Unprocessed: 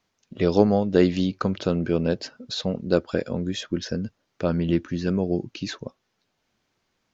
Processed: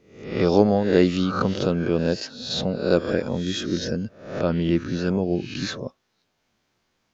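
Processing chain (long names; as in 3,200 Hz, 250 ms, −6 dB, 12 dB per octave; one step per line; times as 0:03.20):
peak hold with a rise ahead of every peak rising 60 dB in 0.59 s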